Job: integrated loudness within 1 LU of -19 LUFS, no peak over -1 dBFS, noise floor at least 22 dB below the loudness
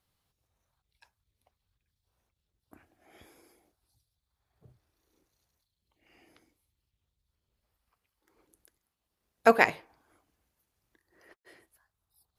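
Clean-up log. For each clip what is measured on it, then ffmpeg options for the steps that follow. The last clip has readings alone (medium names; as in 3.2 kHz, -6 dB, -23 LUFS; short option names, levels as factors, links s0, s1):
loudness -24.5 LUFS; peak level -5.5 dBFS; loudness target -19.0 LUFS
-> -af "volume=1.88,alimiter=limit=0.891:level=0:latency=1"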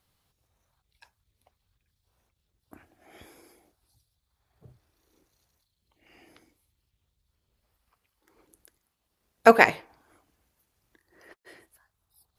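loudness -19.5 LUFS; peak level -1.0 dBFS; noise floor -79 dBFS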